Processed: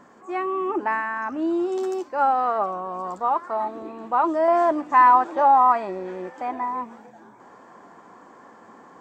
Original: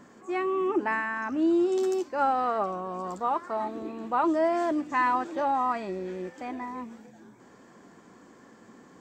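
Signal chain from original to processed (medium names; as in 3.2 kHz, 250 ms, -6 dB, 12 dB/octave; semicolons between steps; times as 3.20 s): peaking EQ 910 Hz +9 dB 1.9 oct, from 4.48 s +15 dB; trim -3 dB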